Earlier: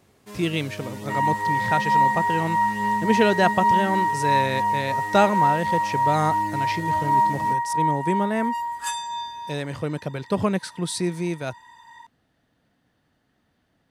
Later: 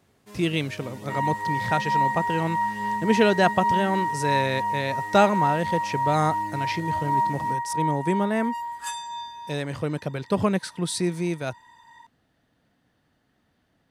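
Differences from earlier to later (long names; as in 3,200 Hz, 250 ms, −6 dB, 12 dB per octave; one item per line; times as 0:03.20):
first sound −5.5 dB
second sound −4.0 dB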